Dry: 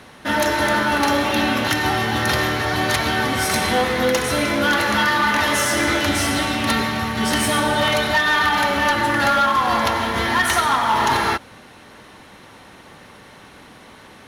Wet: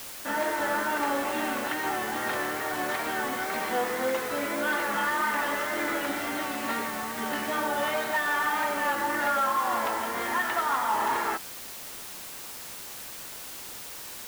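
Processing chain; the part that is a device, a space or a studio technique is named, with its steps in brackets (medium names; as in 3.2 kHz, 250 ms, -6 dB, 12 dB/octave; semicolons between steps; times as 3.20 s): wax cylinder (band-pass 300–2100 Hz; wow and flutter; white noise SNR 11 dB); trim -8 dB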